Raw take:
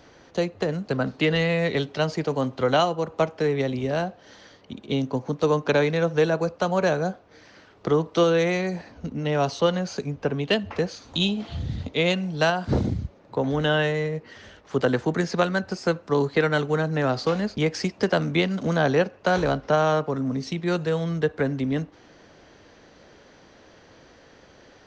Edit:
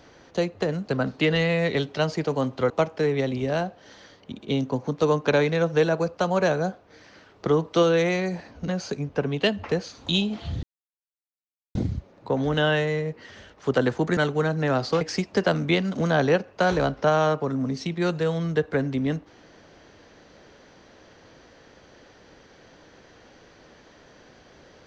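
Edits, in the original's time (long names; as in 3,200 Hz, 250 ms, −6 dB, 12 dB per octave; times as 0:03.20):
0:02.70–0:03.11: remove
0:09.09–0:09.75: remove
0:11.70–0:12.82: silence
0:15.24–0:16.51: remove
0:17.35–0:17.67: remove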